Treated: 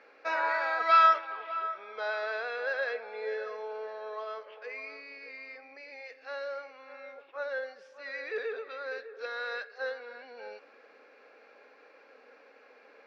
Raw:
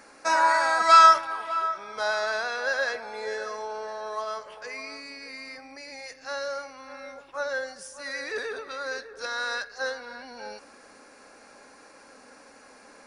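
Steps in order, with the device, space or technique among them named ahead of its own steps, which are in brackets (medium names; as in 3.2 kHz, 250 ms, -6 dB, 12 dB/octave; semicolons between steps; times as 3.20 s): phone earpiece (cabinet simulation 390–3700 Hz, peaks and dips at 460 Hz +9 dB, 960 Hz -5 dB, 2.4 kHz +5 dB); trim -6 dB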